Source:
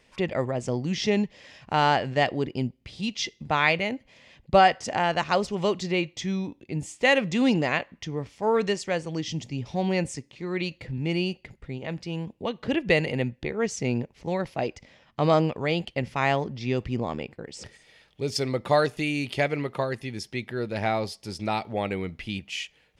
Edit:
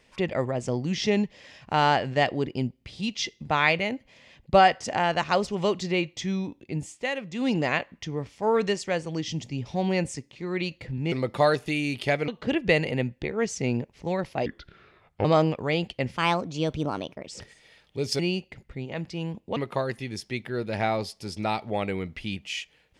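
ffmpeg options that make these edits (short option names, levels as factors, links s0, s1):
-filter_complex "[0:a]asplit=11[s0][s1][s2][s3][s4][s5][s6][s7][s8][s9][s10];[s0]atrim=end=7.1,asetpts=PTS-STARTPTS,afade=t=out:st=6.75:d=0.35:silence=0.316228[s11];[s1]atrim=start=7.1:end=7.31,asetpts=PTS-STARTPTS,volume=0.316[s12];[s2]atrim=start=7.31:end=11.122,asetpts=PTS-STARTPTS,afade=t=in:d=0.35:silence=0.316228[s13];[s3]atrim=start=18.428:end=19.592[s14];[s4]atrim=start=12.488:end=14.674[s15];[s5]atrim=start=14.67:end=15.22,asetpts=PTS-STARTPTS,asetrate=30870,aresample=44100[s16];[s6]atrim=start=15.216:end=16.144[s17];[s7]atrim=start=16.14:end=17.5,asetpts=PTS-STARTPTS,asetrate=54684,aresample=44100[s18];[s8]atrim=start=17.496:end=18.432[s19];[s9]atrim=start=11.118:end=12.492[s20];[s10]atrim=start=19.588[s21];[s11][s12][s13]concat=n=3:v=0:a=1[s22];[s22][s14]acrossfade=d=0.004:c1=hsin:c2=hsin[s23];[s23][s15]acrossfade=d=0.004:c1=hsin:c2=hsin[s24];[s24][s16]acrossfade=d=0.004:c1=hsin:c2=hsin[s25];[s25][s17]acrossfade=d=0.004:c1=hsin:c2=hsin[s26];[s26][s18]acrossfade=d=0.004:c1=hsin:c2=hsin[s27];[s27][s19]acrossfade=d=0.004:c1=hsin:c2=hsin[s28];[s28][s20]acrossfade=d=0.004:c1=hsin:c2=hsin[s29];[s29][s21]acrossfade=d=0.004:c1=hsin:c2=hsin"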